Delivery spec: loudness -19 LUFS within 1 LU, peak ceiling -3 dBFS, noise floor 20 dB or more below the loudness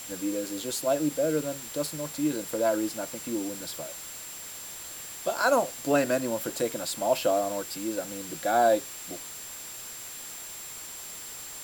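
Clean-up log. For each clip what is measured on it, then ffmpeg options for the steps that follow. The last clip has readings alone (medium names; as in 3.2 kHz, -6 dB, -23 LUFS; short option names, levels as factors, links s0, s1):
steady tone 7.4 kHz; tone level -42 dBFS; noise floor -41 dBFS; noise floor target -50 dBFS; loudness -30.0 LUFS; peak level -11.0 dBFS; loudness target -19.0 LUFS
-> -af "bandreject=f=7400:w=30"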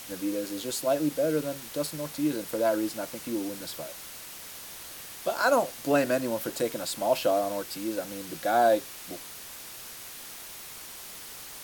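steady tone not found; noise floor -43 dBFS; noise floor target -50 dBFS
-> -af "afftdn=nr=7:nf=-43"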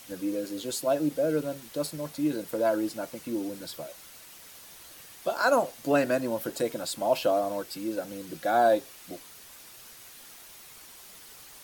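noise floor -49 dBFS; loudness -29.0 LUFS; peak level -11.0 dBFS; loudness target -19.0 LUFS
-> -af "volume=3.16,alimiter=limit=0.708:level=0:latency=1"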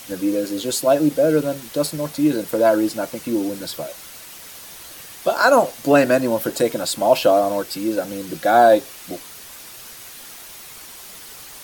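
loudness -19.0 LUFS; peak level -3.0 dBFS; noise floor -39 dBFS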